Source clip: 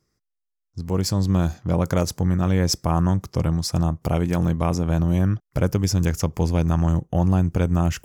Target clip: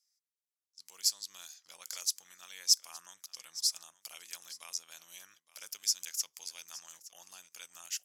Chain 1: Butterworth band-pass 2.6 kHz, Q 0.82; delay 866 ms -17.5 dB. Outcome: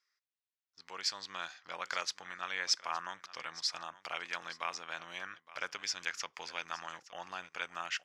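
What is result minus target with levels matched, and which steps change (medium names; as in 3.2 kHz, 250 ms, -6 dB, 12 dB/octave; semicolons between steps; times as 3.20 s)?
2 kHz band +20.0 dB
change: Butterworth band-pass 8.6 kHz, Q 0.82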